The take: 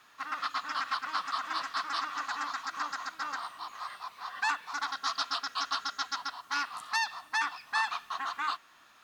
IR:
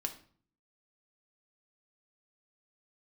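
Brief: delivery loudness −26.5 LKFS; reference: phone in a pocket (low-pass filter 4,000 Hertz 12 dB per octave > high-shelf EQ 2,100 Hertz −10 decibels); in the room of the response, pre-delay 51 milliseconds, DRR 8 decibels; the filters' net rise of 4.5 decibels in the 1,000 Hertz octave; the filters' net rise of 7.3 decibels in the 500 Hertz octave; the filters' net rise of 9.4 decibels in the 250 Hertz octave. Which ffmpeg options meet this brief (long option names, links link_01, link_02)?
-filter_complex "[0:a]equalizer=frequency=250:width_type=o:gain=8.5,equalizer=frequency=500:width_type=o:gain=7.5,equalizer=frequency=1000:width_type=o:gain=6,asplit=2[link_01][link_02];[1:a]atrim=start_sample=2205,adelay=51[link_03];[link_02][link_03]afir=irnorm=-1:irlink=0,volume=-8.5dB[link_04];[link_01][link_04]amix=inputs=2:normalize=0,lowpass=4000,highshelf=frequency=2100:gain=-10,volume=5dB"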